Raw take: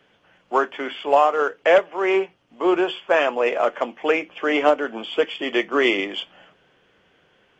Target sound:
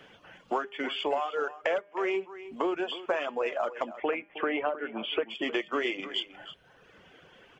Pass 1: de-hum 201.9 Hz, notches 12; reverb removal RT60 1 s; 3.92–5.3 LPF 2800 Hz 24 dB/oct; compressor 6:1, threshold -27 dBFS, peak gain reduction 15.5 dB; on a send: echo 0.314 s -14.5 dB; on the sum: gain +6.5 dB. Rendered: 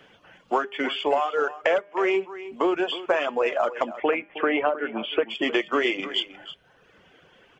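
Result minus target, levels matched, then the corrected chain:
compressor: peak gain reduction -6.5 dB
de-hum 201.9 Hz, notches 12; reverb removal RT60 1 s; 3.92–5.3 LPF 2800 Hz 24 dB/oct; compressor 6:1, threshold -35 dBFS, peak gain reduction 22 dB; on a send: echo 0.314 s -14.5 dB; on the sum: gain +6.5 dB

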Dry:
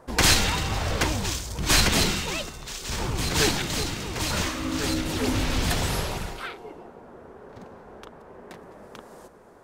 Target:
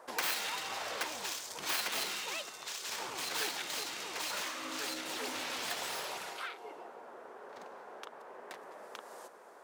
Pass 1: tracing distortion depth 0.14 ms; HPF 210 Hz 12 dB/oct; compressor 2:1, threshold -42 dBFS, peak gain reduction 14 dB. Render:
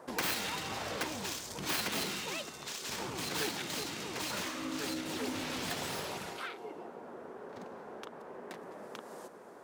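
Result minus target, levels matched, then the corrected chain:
250 Hz band +10.5 dB
tracing distortion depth 0.14 ms; HPF 570 Hz 12 dB/oct; compressor 2:1, threshold -42 dBFS, peak gain reduction 14 dB

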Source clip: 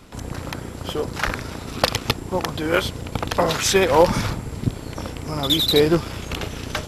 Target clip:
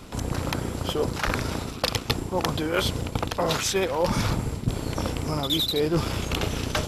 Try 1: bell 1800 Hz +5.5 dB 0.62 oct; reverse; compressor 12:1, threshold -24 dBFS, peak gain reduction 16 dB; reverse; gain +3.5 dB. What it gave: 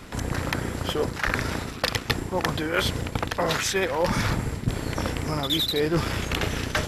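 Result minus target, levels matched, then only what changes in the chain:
2000 Hz band +4.0 dB
change: bell 1800 Hz -3 dB 0.62 oct

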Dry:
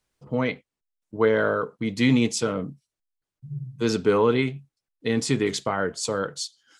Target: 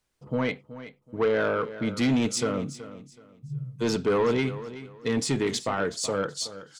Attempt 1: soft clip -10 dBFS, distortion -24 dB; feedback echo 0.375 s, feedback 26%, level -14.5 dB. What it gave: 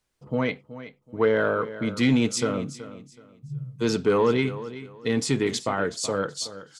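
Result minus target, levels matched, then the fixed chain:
soft clip: distortion -11 dB
soft clip -18 dBFS, distortion -13 dB; feedback echo 0.375 s, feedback 26%, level -14.5 dB

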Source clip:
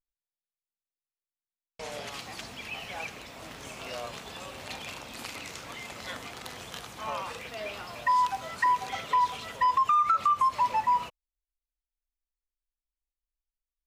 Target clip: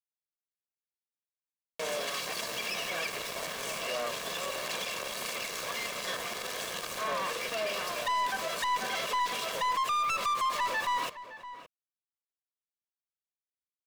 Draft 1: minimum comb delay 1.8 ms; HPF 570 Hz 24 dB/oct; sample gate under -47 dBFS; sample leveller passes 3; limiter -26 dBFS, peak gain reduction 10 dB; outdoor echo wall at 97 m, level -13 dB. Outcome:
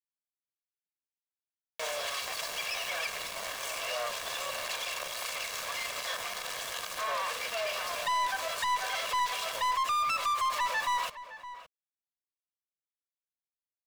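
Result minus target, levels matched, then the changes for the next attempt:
250 Hz band -11.0 dB
change: HPF 180 Hz 24 dB/oct

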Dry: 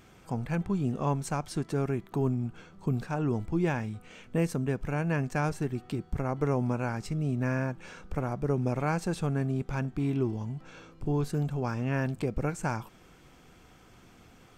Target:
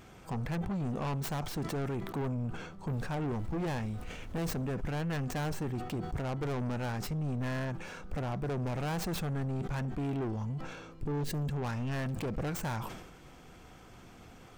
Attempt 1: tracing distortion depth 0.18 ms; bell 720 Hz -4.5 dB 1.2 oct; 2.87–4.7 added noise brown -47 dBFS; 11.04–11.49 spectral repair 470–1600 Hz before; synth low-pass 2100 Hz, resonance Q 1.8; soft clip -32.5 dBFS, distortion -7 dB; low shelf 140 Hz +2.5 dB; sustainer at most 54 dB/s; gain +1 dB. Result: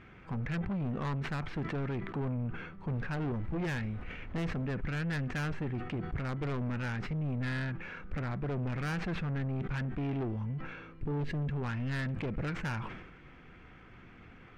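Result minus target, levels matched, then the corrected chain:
2000 Hz band +4.0 dB; 1000 Hz band -2.5 dB
tracing distortion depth 0.18 ms; bell 720 Hz +3 dB 1.2 oct; 2.87–4.7 added noise brown -47 dBFS; 11.04–11.49 spectral repair 470–1600 Hz before; soft clip -32.5 dBFS, distortion -6 dB; low shelf 140 Hz +2.5 dB; sustainer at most 54 dB/s; gain +1 dB

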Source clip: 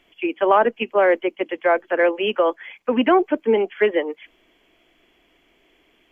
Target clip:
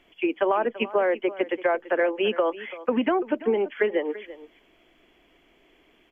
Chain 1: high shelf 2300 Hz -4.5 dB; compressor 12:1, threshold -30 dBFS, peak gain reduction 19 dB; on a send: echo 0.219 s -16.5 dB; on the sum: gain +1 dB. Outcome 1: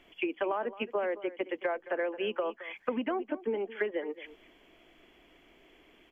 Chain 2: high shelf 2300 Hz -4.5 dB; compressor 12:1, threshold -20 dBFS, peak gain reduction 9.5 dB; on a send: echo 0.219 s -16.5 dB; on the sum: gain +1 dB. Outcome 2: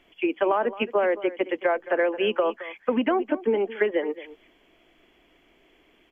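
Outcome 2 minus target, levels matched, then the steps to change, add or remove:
echo 0.118 s early
change: echo 0.337 s -16.5 dB

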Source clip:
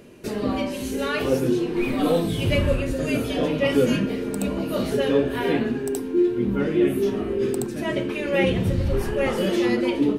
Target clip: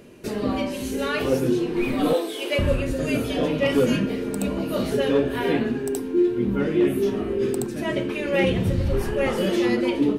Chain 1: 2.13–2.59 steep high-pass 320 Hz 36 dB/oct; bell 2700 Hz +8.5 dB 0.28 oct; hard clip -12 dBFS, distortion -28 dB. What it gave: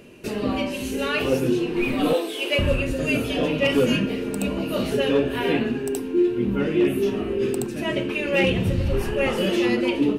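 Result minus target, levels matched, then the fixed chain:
2000 Hz band +2.5 dB
2.13–2.59 steep high-pass 320 Hz 36 dB/oct; hard clip -12 dBFS, distortion -28 dB

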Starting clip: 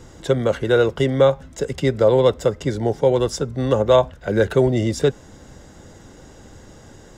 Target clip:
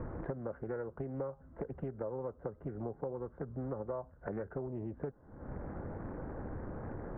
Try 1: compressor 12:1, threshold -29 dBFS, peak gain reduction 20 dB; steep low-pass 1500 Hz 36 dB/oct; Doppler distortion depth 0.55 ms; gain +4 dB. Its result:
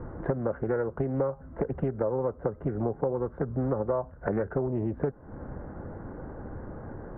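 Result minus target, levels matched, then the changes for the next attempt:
compressor: peak gain reduction -11 dB
change: compressor 12:1, threshold -41 dBFS, peak gain reduction 31 dB

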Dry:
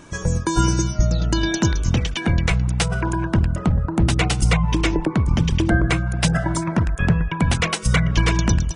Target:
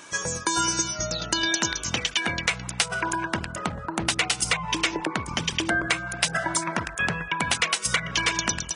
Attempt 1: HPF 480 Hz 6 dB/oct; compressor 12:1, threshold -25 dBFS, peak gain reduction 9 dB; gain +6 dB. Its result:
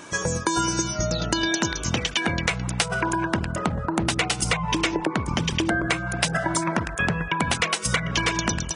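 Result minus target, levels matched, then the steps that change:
500 Hz band +4.0 dB
change: HPF 1500 Hz 6 dB/oct

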